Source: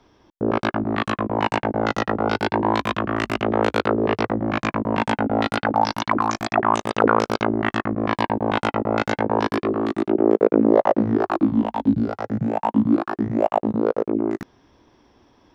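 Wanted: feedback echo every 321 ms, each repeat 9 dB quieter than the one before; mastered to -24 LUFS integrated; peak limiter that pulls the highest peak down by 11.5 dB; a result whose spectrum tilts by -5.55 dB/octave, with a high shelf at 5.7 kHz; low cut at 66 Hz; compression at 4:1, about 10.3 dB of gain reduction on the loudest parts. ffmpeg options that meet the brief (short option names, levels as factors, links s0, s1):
-af "highpass=66,highshelf=f=5700:g=-5,acompressor=threshold=0.0631:ratio=4,alimiter=limit=0.0841:level=0:latency=1,aecho=1:1:321|642|963|1284:0.355|0.124|0.0435|0.0152,volume=2.66"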